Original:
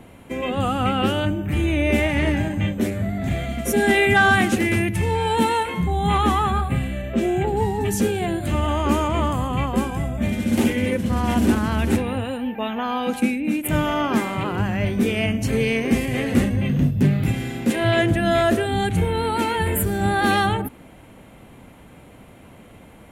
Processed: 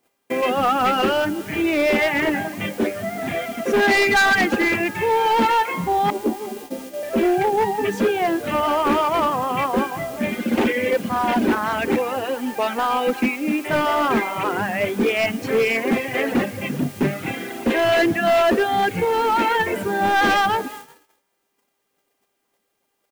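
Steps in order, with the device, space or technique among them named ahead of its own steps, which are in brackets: reverb removal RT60 1.6 s; 6.10–7.03 s: elliptic band-pass 220–620 Hz; frequency-shifting echo 358 ms, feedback 41%, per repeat +42 Hz, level -22 dB; aircraft radio (band-pass 350–2500 Hz; hard clipper -22 dBFS, distortion -11 dB; mains buzz 400 Hz, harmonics 8, -55 dBFS -3 dB/octave; white noise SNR 22 dB; gate -43 dBFS, range -33 dB); trim +8.5 dB

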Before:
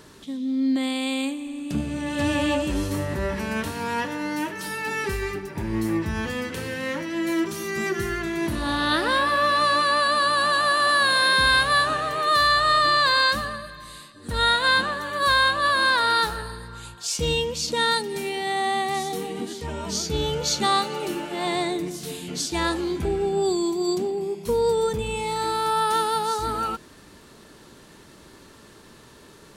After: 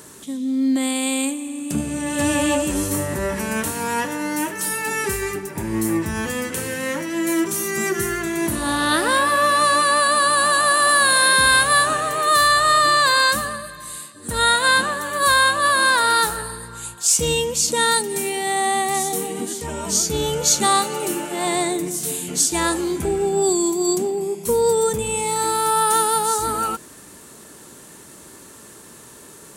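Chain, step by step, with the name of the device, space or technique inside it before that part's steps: budget condenser microphone (high-pass 110 Hz 6 dB/octave; resonant high shelf 6 kHz +9.5 dB, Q 1.5); trim +4 dB

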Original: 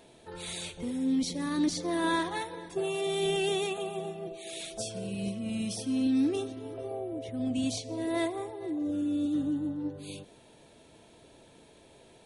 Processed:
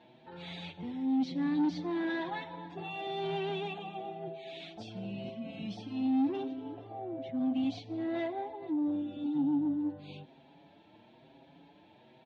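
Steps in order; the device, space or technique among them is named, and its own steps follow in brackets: barber-pole flanger into a guitar amplifier (endless flanger 6.2 ms +1 Hz; saturation -29 dBFS, distortion -14 dB; cabinet simulation 110–3700 Hz, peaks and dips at 160 Hz +6 dB, 280 Hz +6 dB, 450 Hz -8 dB, 820 Hz +8 dB, 1.2 kHz -4 dB)

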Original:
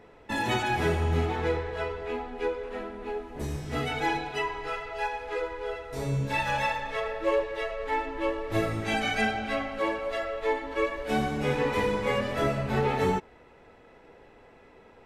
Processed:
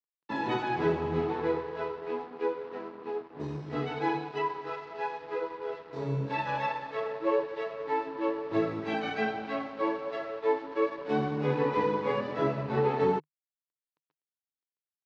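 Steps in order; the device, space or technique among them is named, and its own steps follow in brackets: blown loudspeaker (crossover distortion -43.5 dBFS; cabinet simulation 150–4600 Hz, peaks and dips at 150 Hz +10 dB, 310 Hz +8 dB, 440 Hz +6 dB, 1 kHz +8 dB, 2.2 kHz -3 dB, 3.2 kHz -4 dB); trim -4.5 dB

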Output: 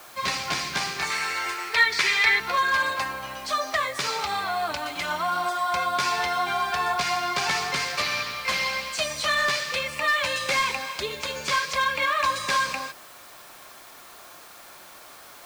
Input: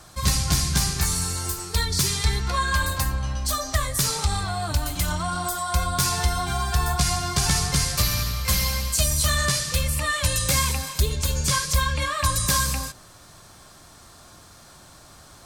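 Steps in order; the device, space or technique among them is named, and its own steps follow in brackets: drive-through speaker (band-pass 440–3300 Hz; peaking EQ 2.3 kHz +5 dB 0.4 oct; hard clipper -21 dBFS, distortion -20 dB; white noise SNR 22 dB); 1.10–2.40 s: graphic EQ 125/250/2000 Hz -8/-4/+11 dB; trim +3.5 dB

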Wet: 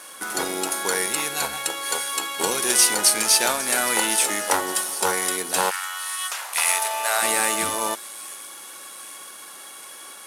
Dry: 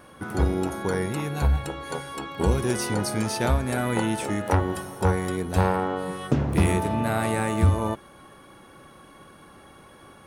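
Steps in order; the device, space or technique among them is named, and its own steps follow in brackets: 5.69–7.21 s: high-pass 1.5 kHz -> 470 Hz 24 dB/octave; early wireless headset (high-pass 250 Hz 12 dB/octave; CVSD coder 64 kbps); tilt EQ +4.5 dB/octave; feedback echo behind a high-pass 811 ms, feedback 60%, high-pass 4.2 kHz, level -15.5 dB; trim +4.5 dB

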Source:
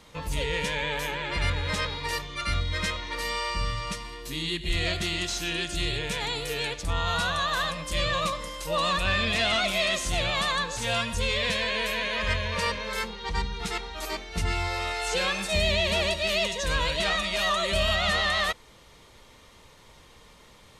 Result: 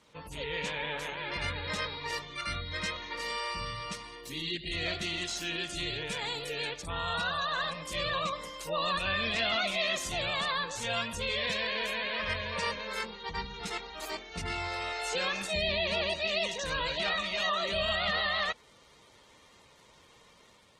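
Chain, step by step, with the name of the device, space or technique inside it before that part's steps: noise-suppressed video call (high-pass 150 Hz 6 dB/octave; spectral gate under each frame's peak -25 dB strong; level rider gain up to 3 dB; trim -7.5 dB; Opus 16 kbps 48 kHz)

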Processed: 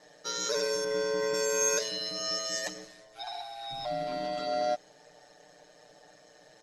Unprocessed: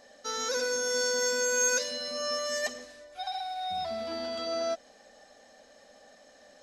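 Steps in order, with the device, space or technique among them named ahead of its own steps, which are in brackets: 0.84–1.34 s: tone controls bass +7 dB, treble -13 dB; ring-modulated robot voice (ring modulator 60 Hz; comb 6.7 ms, depth 94%)

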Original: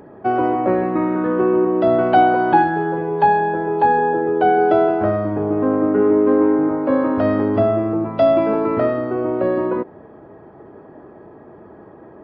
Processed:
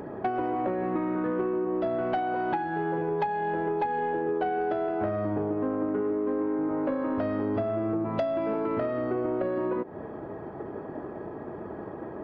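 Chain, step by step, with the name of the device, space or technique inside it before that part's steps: drum-bus smash (transient shaper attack +5 dB, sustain +1 dB; compression 12:1, threshold -27 dBFS, peak gain reduction 21.5 dB; saturation -22 dBFS, distortion -21 dB); trim +3 dB

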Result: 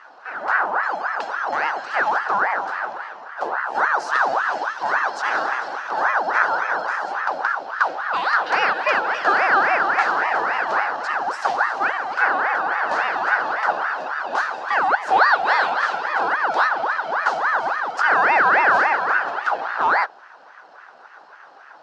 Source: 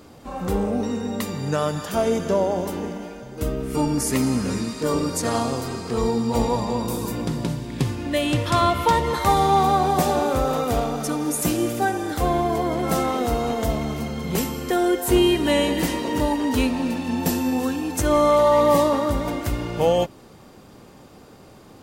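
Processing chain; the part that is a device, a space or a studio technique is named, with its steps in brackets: voice changer toy (ring modulator with a swept carrier 970 Hz, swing 60%, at 3.6 Hz; cabinet simulation 580–4700 Hz, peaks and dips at 800 Hz +6 dB, 1.5 kHz +7 dB, 2.2 kHz -7 dB, 3.5 kHz -6 dB); trim +3 dB

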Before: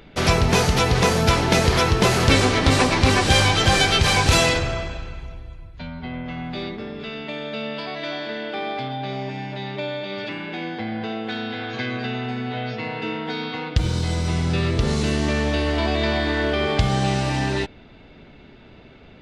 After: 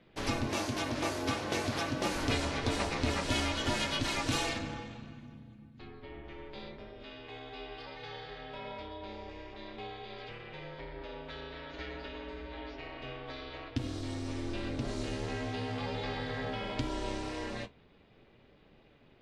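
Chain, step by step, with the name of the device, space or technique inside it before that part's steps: alien voice (ring modulator 180 Hz; flange 0.48 Hz, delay 5.6 ms, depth 6.6 ms, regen -57%); 0.47–2.15 s: high-pass 91 Hz; trim -8 dB

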